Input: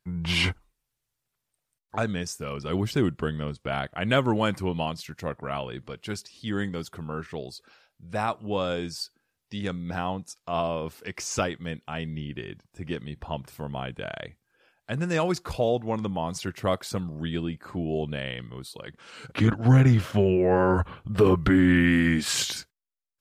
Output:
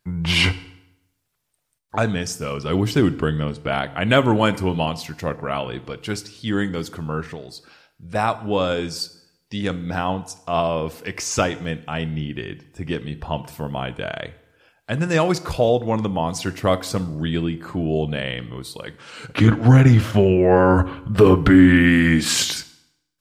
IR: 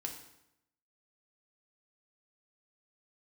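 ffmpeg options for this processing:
-filter_complex "[0:a]asettb=1/sr,asplit=3[a][b][c];[a]atrim=end=7.244[d];[b]atrim=start=7.24:end=8.15,asetpts=PTS-STARTPTS,afade=t=in:d=0.004:c=qsin,afade=t=out:st=0.906:d=0.004:c=qsin,acompressor=threshold=-38dB:ratio=6[e];[c]atrim=start=8.146[f];[d][e]acrossfade=d=0.004:c1=hsin:c2=qsin[g];[g][f]acrossfade=d=0.004:c1=qsin:c2=hsin,asplit=2[h][i];[1:a]atrim=start_sample=2205[j];[i][j]afir=irnorm=-1:irlink=0,volume=-6dB[k];[h][k]amix=inputs=2:normalize=0,volume=4dB"

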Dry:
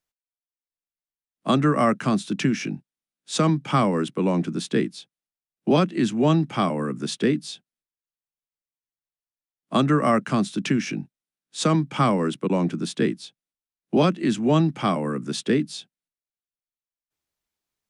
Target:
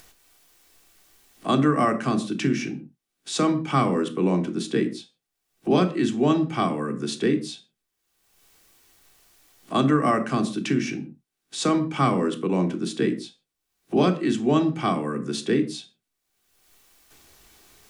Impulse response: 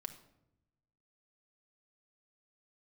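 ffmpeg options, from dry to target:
-filter_complex "[0:a]acompressor=mode=upward:threshold=-27dB:ratio=2.5[a];[1:a]atrim=start_sample=2205,afade=t=out:st=0.35:d=0.01,atrim=end_sample=15876,asetrate=79380,aresample=44100[b];[a][b]afir=irnorm=-1:irlink=0,volume=7dB"

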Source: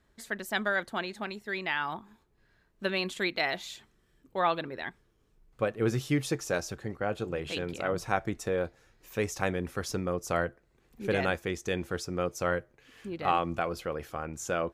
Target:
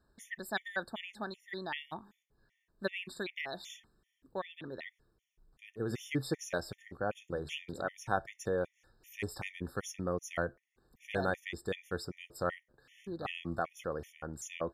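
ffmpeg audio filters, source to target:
-filter_complex "[0:a]asplit=3[a][b][c];[a]afade=t=out:st=2.87:d=0.02[d];[b]acompressor=threshold=-30dB:ratio=4,afade=t=in:st=2.87:d=0.02,afade=t=out:st=5.89:d=0.02[e];[c]afade=t=in:st=5.89:d=0.02[f];[d][e][f]amix=inputs=3:normalize=0,afftfilt=real='re*gt(sin(2*PI*2.6*pts/sr)*(1-2*mod(floor(b*sr/1024/1800),2)),0)':imag='im*gt(sin(2*PI*2.6*pts/sr)*(1-2*mod(floor(b*sr/1024/1800),2)),0)':win_size=1024:overlap=0.75,volume=-3dB"

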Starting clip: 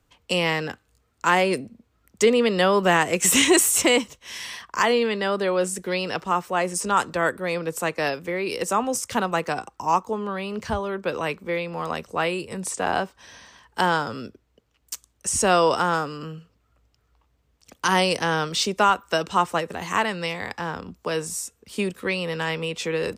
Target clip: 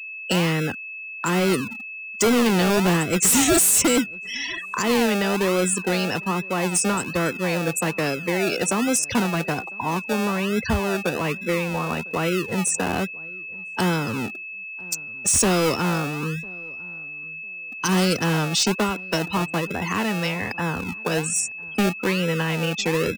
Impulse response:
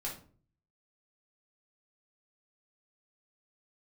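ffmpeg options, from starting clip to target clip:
-filter_complex "[0:a]afftfilt=real='re*gte(hypot(re,im),0.0316)':imag='im*gte(hypot(re,im),0.0316)':win_size=1024:overlap=0.75,acrossover=split=390|5200[a][b][c];[a]acrusher=samples=34:mix=1:aa=0.000001:lfo=1:lforange=20.4:lforate=1.2[d];[b]acompressor=threshold=-34dB:ratio=8[e];[d][e][c]amix=inputs=3:normalize=0,aeval=exprs='val(0)+0.00891*sin(2*PI*2600*n/s)':c=same,volume=23.5dB,asoftclip=hard,volume=-23.5dB,asplit=2[f][g];[g]adelay=1002,lowpass=f=1k:p=1,volume=-23.5dB,asplit=2[h][i];[i]adelay=1002,lowpass=f=1k:p=1,volume=0.2[j];[h][j]amix=inputs=2:normalize=0[k];[f][k]amix=inputs=2:normalize=0,volume=8.5dB"

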